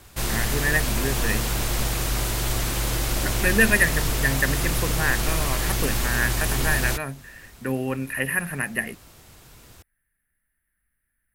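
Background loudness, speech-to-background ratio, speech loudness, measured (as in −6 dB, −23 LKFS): −25.0 LKFS, −0.5 dB, −25.5 LKFS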